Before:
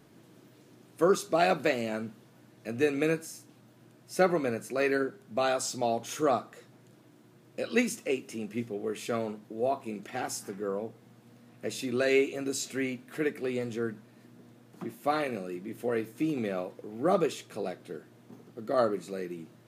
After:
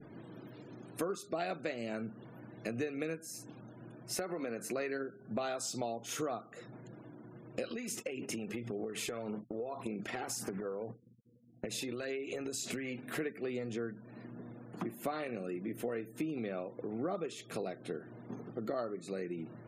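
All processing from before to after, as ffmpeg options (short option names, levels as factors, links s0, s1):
-filter_complex "[0:a]asettb=1/sr,asplit=3[s0][s1][s2];[s0]atrim=end=4.174[s3];[s1]atrim=start=4.17:end=4.7,asetpts=PTS-STARTPTS,afade=t=in:d=0.004:c=qsin,afade=t=out:st=0.526:d=0.004:c=qsin,highpass=180,acompressor=threshold=0.0282:ratio=3:attack=3.2:release=140:knee=1:detection=peak[s4];[s2]atrim=start=4.696[s5];[s3][s4]acrossfade=d=0.004:c1=hsin:c2=qsin[s6];[s6][s5]acrossfade=d=0.004:c1=qsin:c2=hsin,asettb=1/sr,asplit=3[s7][s8][s9];[s7]atrim=end=7.704[s10];[s8]atrim=start=7.7:end=13.03,asetpts=PTS-STARTPTS,afade=t=in:d=0.004:c=qsin,afade=t=out:st=5.326:d=0.004:c=qsin,agate=range=0.0224:threshold=0.00501:ratio=3:release=100:detection=peak,acompressor=threshold=0.0126:ratio=12:attack=3.2:release=140:knee=1:detection=peak,aphaser=in_gain=1:out_gain=1:delay=2.4:decay=0.36:speed=1.8:type=sinusoidal[s11];[s9]atrim=start=13.026[s12];[s10][s11]acrossfade=d=0.004:c1=hsin:c2=qsin[s13];[s13][s12]acrossfade=d=0.004:c1=qsin:c2=hsin,adynamicequalizer=threshold=0.00631:dfrequency=980:dqfactor=2.1:tfrequency=980:tqfactor=2.1:attack=5:release=100:ratio=0.375:range=2:mode=cutabove:tftype=bell,acompressor=threshold=0.00794:ratio=6,afftfilt=real='re*gte(hypot(re,im),0.000794)':imag='im*gte(hypot(re,im),0.000794)':win_size=1024:overlap=0.75,volume=2.11"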